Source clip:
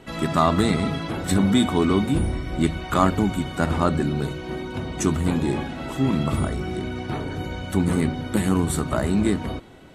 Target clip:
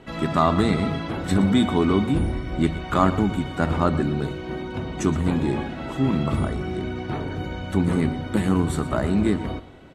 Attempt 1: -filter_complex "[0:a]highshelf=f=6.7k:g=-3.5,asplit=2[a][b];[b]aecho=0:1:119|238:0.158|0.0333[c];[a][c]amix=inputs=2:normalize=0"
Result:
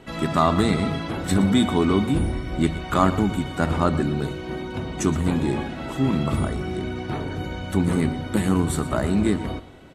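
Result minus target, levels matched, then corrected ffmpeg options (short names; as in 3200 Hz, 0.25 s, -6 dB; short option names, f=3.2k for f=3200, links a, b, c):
8000 Hz band +5.0 dB
-filter_complex "[0:a]highshelf=f=6.7k:g=-12.5,asplit=2[a][b];[b]aecho=0:1:119|238:0.158|0.0333[c];[a][c]amix=inputs=2:normalize=0"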